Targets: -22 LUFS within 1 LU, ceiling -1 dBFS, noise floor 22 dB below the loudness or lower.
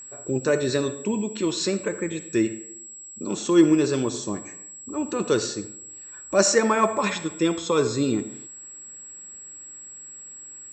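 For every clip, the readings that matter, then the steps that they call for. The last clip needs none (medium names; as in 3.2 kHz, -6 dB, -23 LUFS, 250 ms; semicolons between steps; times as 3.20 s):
tick rate 28 per s; steady tone 7.7 kHz; tone level -39 dBFS; loudness -24.0 LUFS; peak level -3.5 dBFS; loudness target -22.0 LUFS
-> de-click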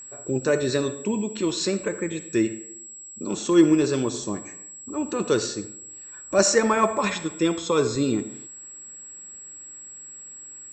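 tick rate 0 per s; steady tone 7.7 kHz; tone level -39 dBFS
-> band-stop 7.7 kHz, Q 30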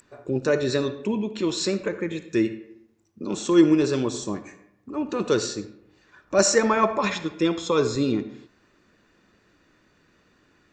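steady tone not found; loudness -24.0 LUFS; peak level -3.5 dBFS; loudness target -22.0 LUFS
-> trim +2 dB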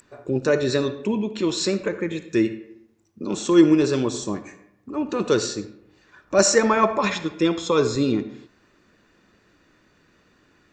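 loudness -22.0 LUFS; peak level -1.5 dBFS; noise floor -61 dBFS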